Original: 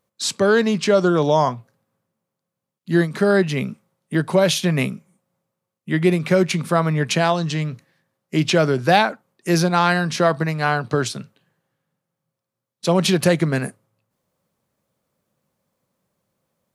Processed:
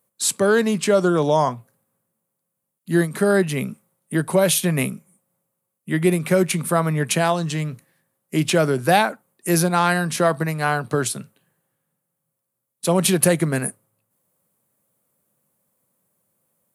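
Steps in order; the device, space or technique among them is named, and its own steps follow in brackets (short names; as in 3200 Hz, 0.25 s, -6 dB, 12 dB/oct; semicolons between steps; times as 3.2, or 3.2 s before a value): budget condenser microphone (HPF 94 Hz; resonant high shelf 7300 Hz +11 dB, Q 1.5); gain -1 dB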